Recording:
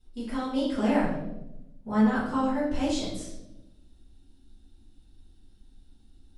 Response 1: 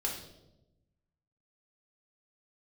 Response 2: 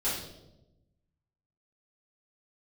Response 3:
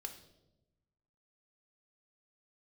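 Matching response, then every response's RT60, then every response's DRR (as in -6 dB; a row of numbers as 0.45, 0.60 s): 2; 0.95, 0.95, 0.95 s; -1.5, -11.0, 5.0 dB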